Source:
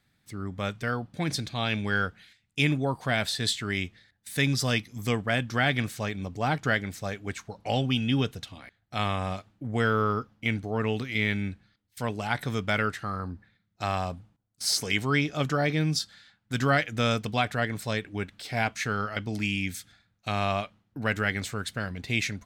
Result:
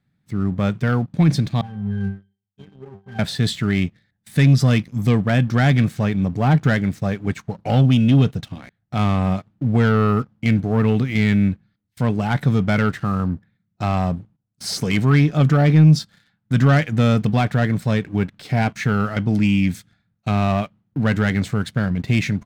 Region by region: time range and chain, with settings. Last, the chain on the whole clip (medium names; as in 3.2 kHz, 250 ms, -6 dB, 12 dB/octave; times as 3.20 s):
1.61–3.19 s: CVSD coder 64 kbps + pitch-class resonator G, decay 0.39 s
whole clip: treble shelf 3.1 kHz -10 dB; waveshaping leveller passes 2; peaking EQ 160 Hz +11 dB 1.3 oct